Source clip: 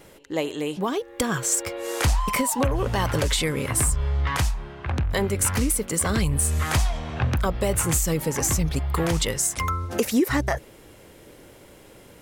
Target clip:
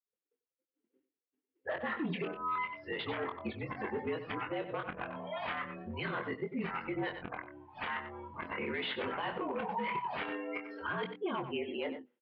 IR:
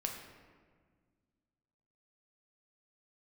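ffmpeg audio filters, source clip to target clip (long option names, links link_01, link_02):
-filter_complex "[0:a]areverse,bandreject=frequency=60:width_type=h:width=6,bandreject=frequency=120:width_type=h:width=6,bandreject=frequency=180:width_type=h:width=6,bandreject=frequency=240:width_type=h:width=6,bandreject=frequency=300:width_type=h:width=6,afftdn=noise_reduction=29:noise_floor=-34,agate=range=-33dB:threshold=-52dB:ratio=3:detection=peak,lowshelf=frequency=490:gain=-11,aresample=11025,asoftclip=type=hard:threshold=-25dB,aresample=44100,highpass=frequency=200:width_type=q:width=0.5412,highpass=frequency=200:width_type=q:width=1.307,lowpass=frequency=3200:width_type=q:width=0.5176,lowpass=frequency=3200:width_type=q:width=0.7071,lowpass=frequency=3200:width_type=q:width=1.932,afreqshift=-53,asplit=2[link_01][link_02];[link_02]adelay=23,volume=-6dB[link_03];[link_01][link_03]amix=inputs=2:normalize=0,asplit=2[link_04][link_05];[link_05]adelay=93.29,volume=-13dB,highshelf=frequency=4000:gain=-2.1[link_06];[link_04][link_06]amix=inputs=2:normalize=0,alimiter=level_in=3.5dB:limit=-24dB:level=0:latency=1:release=127,volume=-3.5dB"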